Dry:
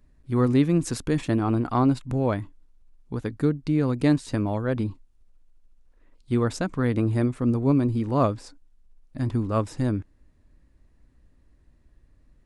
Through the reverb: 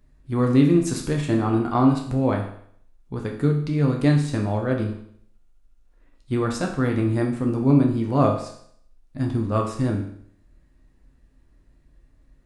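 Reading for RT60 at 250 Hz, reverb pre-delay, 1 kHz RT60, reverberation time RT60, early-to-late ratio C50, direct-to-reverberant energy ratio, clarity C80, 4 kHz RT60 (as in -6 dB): 0.60 s, 8 ms, 0.60 s, 0.60 s, 7.0 dB, 1.0 dB, 10.0 dB, 0.60 s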